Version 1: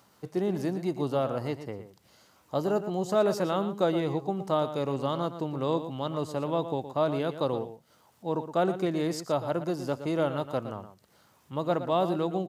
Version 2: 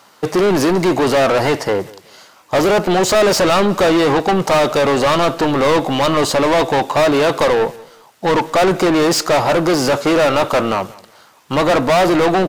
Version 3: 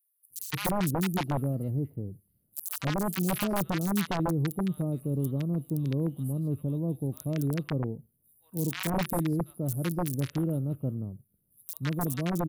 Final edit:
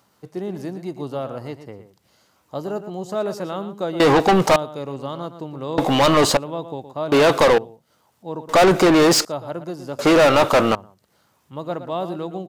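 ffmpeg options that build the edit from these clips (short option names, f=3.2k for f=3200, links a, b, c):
-filter_complex "[1:a]asplit=5[a][b][c][d][e];[0:a]asplit=6[f][g][h][i][j][k];[f]atrim=end=4.002[l];[a]atrim=start=3.998:end=4.562[m];[g]atrim=start=4.558:end=5.782[n];[b]atrim=start=5.778:end=6.372[o];[h]atrim=start=6.368:end=7.122[p];[c]atrim=start=7.118:end=7.582[q];[i]atrim=start=7.578:end=8.492[r];[d]atrim=start=8.488:end=9.252[s];[j]atrim=start=9.248:end=9.992[t];[e]atrim=start=9.988:end=10.752[u];[k]atrim=start=10.748[v];[l][m]acrossfade=d=0.004:c1=hsin:c2=hsin[w];[w][n]acrossfade=d=0.004:c1=hsin:c2=hsin[x];[x][o]acrossfade=d=0.004:c1=hsin:c2=hsin[y];[y][p]acrossfade=d=0.004:c1=hsin:c2=hsin[z];[z][q]acrossfade=d=0.004:c1=hsin:c2=hsin[aa];[aa][r]acrossfade=d=0.004:c1=hsin:c2=hsin[ab];[ab][s]acrossfade=d=0.004:c1=hsin:c2=hsin[ac];[ac][t]acrossfade=d=0.004:c1=hsin:c2=hsin[ad];[ad][u]acrossfade=d=0.004:c1=hsin:c2=hsin[ae];[ae][v]acrossfade=d=0.004:c1=hsin:c2=hsin"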